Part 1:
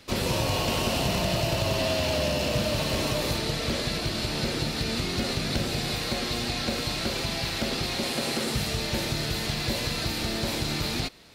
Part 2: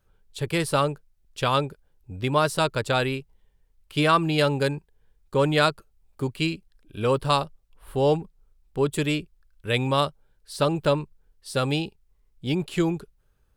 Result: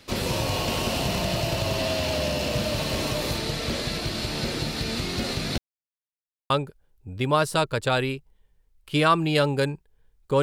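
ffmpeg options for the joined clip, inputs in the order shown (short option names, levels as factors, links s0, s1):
-filter_complex "[0:a]apad=whole_dur=10.42,atrim=end=10.42,asplit=2[s0][s1];[s0]atrim=end=5.58,asetpts=PTS-STARTPTS,afade=t=out:st=5.576:d=0.004:c=hsin[s2];[s1]atrim=start=5.58:end=6.5,asetpts=PTS-STARTPTS,volume=0[s3];[1:a]atrim=start=1.53:end=5.45,asetpts=PTS-STARTPTS,afade=t=in:d=0.004:c=hsin[s4];[s2][s3][s4]concat=n=3:v=0:a=1"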